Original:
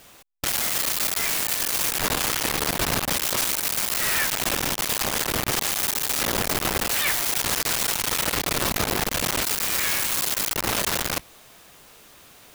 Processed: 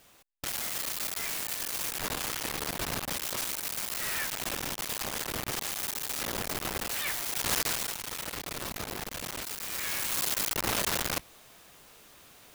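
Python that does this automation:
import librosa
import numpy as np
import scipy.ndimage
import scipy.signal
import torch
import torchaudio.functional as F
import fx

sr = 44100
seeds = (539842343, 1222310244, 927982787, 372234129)

y = fx.gain(x, sr, db=fx.line((7.31, -9.5), (7.56, -3.0), (8.0, -13.0), (9.59, -13.0), (10.24, -5.0)))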